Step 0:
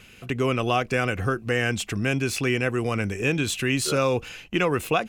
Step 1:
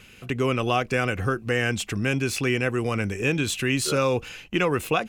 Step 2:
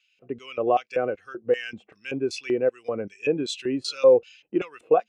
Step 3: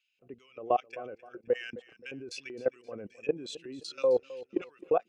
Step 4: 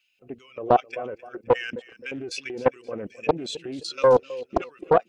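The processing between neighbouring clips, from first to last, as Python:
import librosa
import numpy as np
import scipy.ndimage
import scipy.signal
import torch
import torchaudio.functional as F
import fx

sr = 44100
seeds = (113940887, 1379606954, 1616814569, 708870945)

y1 = fx.notch(x, sr, hz=680.0, q=19.0)
y2 = fx.filter_lfo_bandpass(y1, sr, shape='square', hz=2.6, low_hz=550.0, high_hz=4500.0, q=1.3)
y2 = fx.spectral_expand(y2, sr, expansion=1.5)
y2 = y2 * librosa.db_to_amplitude(8.5)
y3 = fx.level_steps(y2, sr, step_db=19)
y3 = fx.echo_feedback(y3, sr, ms=262, feedback_pct=35, wet_db=-18)
y3 = y3 * librosa.db_to_amplitude(-3.5)
y4 = fx.spec_quant(y3, sr, step_db=15)
y4 = fx.doppler_dist(y4, sr, depth_ms=0.82)
y4 = y4 * librosa.db_to_amplitude(9.0)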